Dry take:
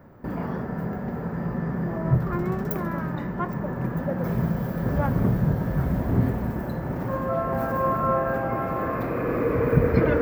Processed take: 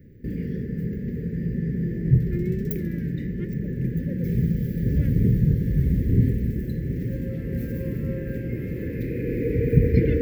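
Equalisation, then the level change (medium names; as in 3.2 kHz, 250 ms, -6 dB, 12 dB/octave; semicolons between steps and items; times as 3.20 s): elliptic band-stop 460–1900 Hz, stop band 40 dB; bass shelf 160 Hz +8.5 dB; -1.5 dB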